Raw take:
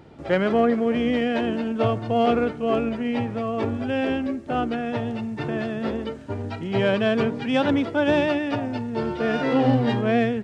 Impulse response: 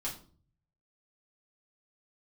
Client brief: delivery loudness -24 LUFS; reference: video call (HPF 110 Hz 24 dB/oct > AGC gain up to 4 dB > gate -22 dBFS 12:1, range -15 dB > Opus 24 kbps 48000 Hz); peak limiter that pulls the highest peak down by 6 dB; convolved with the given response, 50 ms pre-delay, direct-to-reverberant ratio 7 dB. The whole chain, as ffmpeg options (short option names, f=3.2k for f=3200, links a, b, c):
-filter_complex "[0:a]alimiter=limit=-14.5dB:level=0:latency=1,asplit=2[a][b];[1:a]atrim=start_sample=2205,adelay=50[c];[b][c]afir=irnorm=-1:irlink=0,volume=-8.5dB[d];[a][d]amix=inputs=2:normalize=0,highpass=f=110:w=0.5412,highpass=f=110:w=1.3066,dynaudnorm=m=4dB,agate=range=-15dB:threshold=-22dB:ratio=12,volume=1.5dB" -ar 48000 -c:a libopus -b:a 24k